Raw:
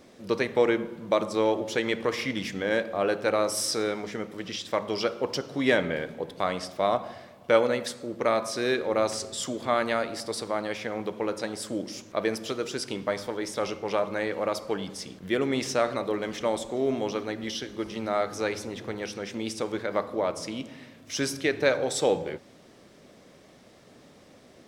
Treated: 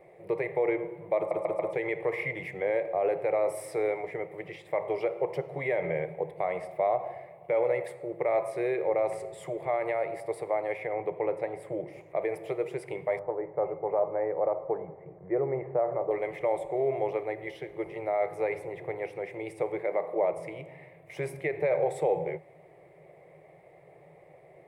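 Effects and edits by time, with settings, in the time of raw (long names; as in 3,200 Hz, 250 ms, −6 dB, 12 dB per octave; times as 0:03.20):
0:01.17: stutter in place 0.14 s, 4 plays
0:10.93–0:12.01: bass and treble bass +3 dB, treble −7 dB
0:13.19–0:16.11: low-pass filter 1,400 Hz 24 dB per octave
0:19.81–0:20.33: low shelf with overshoot 140 Hz −10.5 dB, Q 1.5
whole clip: brickwall limiter −17.5 dBFS; drawn EQ curve 100 Hz 0 dB, 160 Hz +13 dB, 230 Hz −25 dB, 350 Hz +8 dB, 770 Hz +13 dB, 1,500 Hz −7 dB, 2,100 Hz +12 dB, 3,000 Hz −9 dB, 5,900 Hz −21 dB, 9,000 Hz −4 dB; level −8.5 dB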